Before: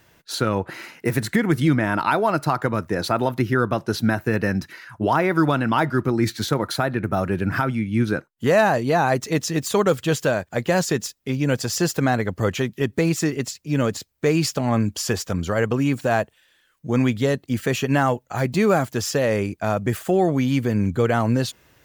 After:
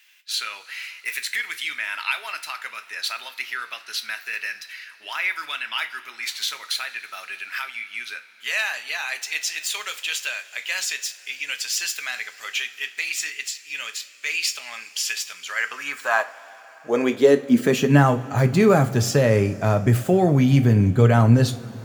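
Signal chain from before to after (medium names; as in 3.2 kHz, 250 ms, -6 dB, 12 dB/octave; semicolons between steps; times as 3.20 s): high-pass sweep 2.5 kHz -> 110 Hz, 15.33–18.34 s; two-slope reverb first 0.3 s, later 4.8 s, from -21 dB, DRR 7 dB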